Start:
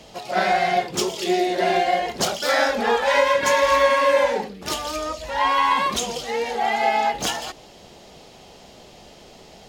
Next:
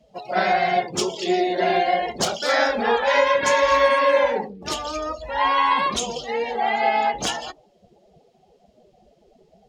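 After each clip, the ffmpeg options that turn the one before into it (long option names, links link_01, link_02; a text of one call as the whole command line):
ffmpeg -i in.wav -af "afftdn=noise_reduction=23:noise_floor=-36" out.wav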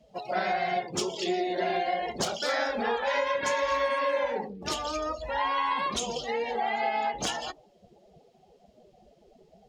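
ffmpeg -i in.wav -af "acompressor=threshold=-26dB:ratio=2.5,volume=-2dB" out.wav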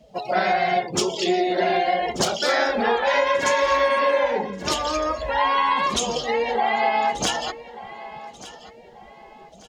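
ffmpeg -i in.wav -af "aecho=1:1:1186|2372|3558:0.141|0.048|0.0163,volume=7.5dB" out.wav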